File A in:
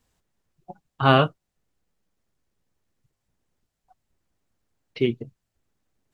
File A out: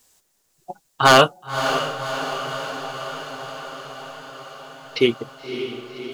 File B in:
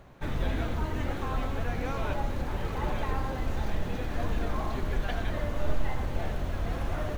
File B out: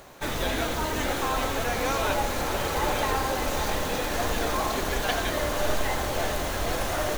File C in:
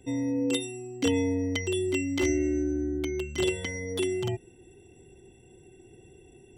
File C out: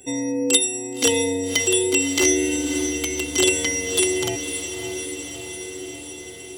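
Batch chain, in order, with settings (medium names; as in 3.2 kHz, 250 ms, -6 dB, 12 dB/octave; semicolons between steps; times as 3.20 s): tone controls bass -12 dB, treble +12 dB; wavefolder -11 dBFS; echo that smears into a reverb 574 ms, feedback 69%, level -8.5 dB; trim +8 dB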